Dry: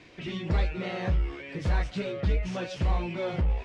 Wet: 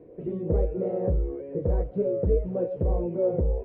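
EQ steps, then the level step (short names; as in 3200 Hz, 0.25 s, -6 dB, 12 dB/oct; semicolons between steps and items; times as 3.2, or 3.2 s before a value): synth low-pass 480 Hz, resonance Q 5.4; 0.0 dB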